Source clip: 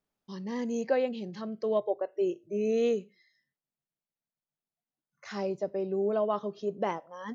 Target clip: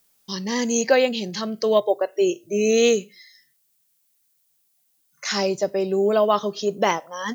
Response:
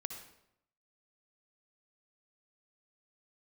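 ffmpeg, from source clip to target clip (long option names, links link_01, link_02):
-af "crystalizer=i=7.5:c=0,volume=8dB"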